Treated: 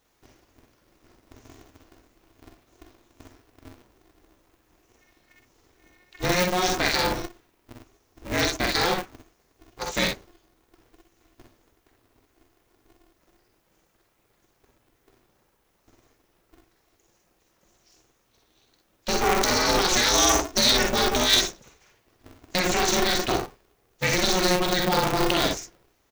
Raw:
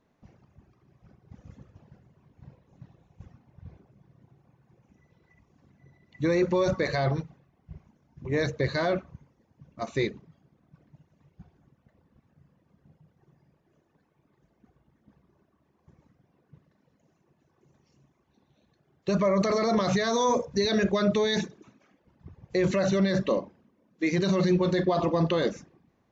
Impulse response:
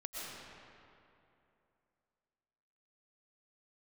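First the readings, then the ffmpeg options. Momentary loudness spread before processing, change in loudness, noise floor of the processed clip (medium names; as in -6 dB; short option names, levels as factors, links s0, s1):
8 LU, +4.0 dB, -68 dBFS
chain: -filter_complex "[0:a]aeval=exprs='0.2*(cos(1*acos(clip(val(0)/0.2,-1,1)))-cos(1*PI/2))+0.02*(cos(3*acos(clip(val(0)/0.2,-1,1)))-cos(3*PI/2))':c=same,crystalizer=i=7.5:c=0,asplit=2[s0][s1];[s1]aecho=0:1:48|61:0.562|0.473[s2];[s0][s2]amix=inputs=2:normalize=0,aeval=exprs='val(0)*sgn(sin(2*PI*180*n/s))':c=same"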